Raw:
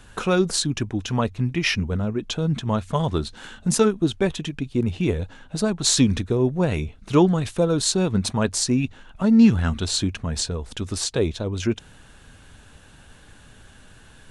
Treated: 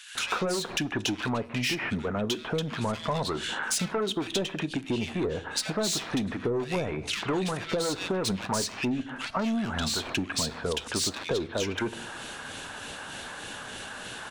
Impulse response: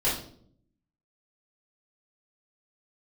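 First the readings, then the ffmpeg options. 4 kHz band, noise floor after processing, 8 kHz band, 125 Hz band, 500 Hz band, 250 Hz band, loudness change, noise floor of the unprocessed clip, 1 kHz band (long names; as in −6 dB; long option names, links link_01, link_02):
−3.0 dB, −42 dBFS, −6.0 dB, −11.5 dB, −6.0 dB, −9.5 dB, −7.5 dB, −49 dBFS, −2.5 dB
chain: -filter_complex "[0:a]asplit=2[link_01][link_02];[link_02]highpass=frequency=720:poles=1,volume=27dB,asoftclip=type=tanh:threshold=-4dB[link_03];[link_01][link_03]amix=inputs=2:normalize=0,lowpass=frequency=2200:poles=1,volume=-6dB,acrossover=split=660[link_04][link_05];[link_04]aeval=exprs='val(0)*(1-0.5/2+0.5/2*cos(2*PI*3.3*n/s))':channel_layout=same[link_06];[link_05]aeval=exprs='val(0)*(1-0.5/2-0.5/2*cos(2*PI*3.3*n/s))':channel_layout=same[link_07];[link_06][link_07]amix=inputs=2:normalize=0,highshelf=frequency=4100:gain=6,acrossover=split=1900[link_08][link_09];[link_08]adelay=150[link_10];[link_10][link_09]amix=inputs=2:normalize=0,asplit=2[link_11][link_12];[1:a]atrim=start_sample=2205[link_13];[link_12][link_13]afir=irnorm=-1:irlink=0,volume=-27.5dB[link_14];[link_11][link_14]amix=inputs=2:normalize=0,acompressor=threshold=-21dB:ratio=6,lowshelf=frequency=110:gain=-6,areverse,acompressor=mode=upward:threshold=-29dB:ratio=2.5,areverse,volume=-4.5dB"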